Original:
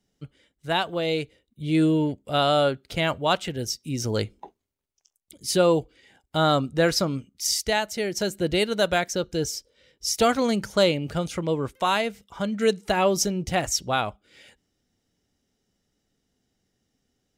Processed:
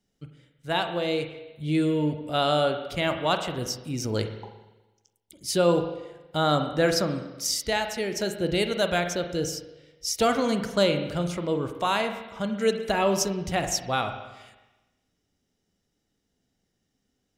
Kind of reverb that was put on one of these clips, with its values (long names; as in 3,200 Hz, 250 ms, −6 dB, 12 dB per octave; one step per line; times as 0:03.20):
spring reverb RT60 1.1 s, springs 40/46 ms, chirp 25 ms, DRR 6.5 dB
level −2.5 dB